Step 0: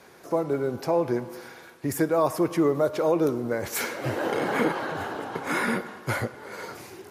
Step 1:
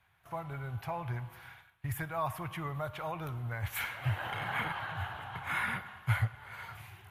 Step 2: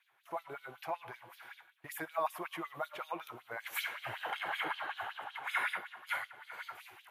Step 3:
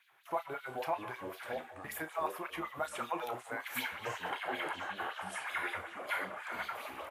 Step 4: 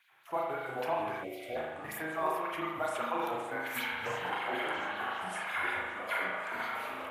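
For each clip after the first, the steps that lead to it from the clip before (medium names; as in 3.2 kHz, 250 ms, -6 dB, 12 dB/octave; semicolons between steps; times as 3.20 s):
bass shelf 260 Hz +6 dB; gate -44 dBFS, range -11 dB; FFT filter 110 Hz 0 dB, 270 Hz -28 dB, 500 Hz -26 dB, 730 Hz -9 dB, 3.2 kHz -2 dB, 5.1 kHz -20 dB, 7.7 kHz -16 dB, 12 kHz -8 dB
LFO high-pass sine 5.3 Hz 320–4100 Hz; trim -2.5 dB
gain riding within 5 dB 0.5 s; doubling 32 ms -10.5 dB; ever faster or slower copies 320 ms, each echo -5 st, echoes 2, each echo -6 dB
spring tank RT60 1.1 s, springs 38 ms, chirp 50 ms, DRR -1.5 dB; time-frequency box 1.24–1.56 s, 780–1900 Hz -21 dB; attacks held to a fixed rise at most 600 dB/s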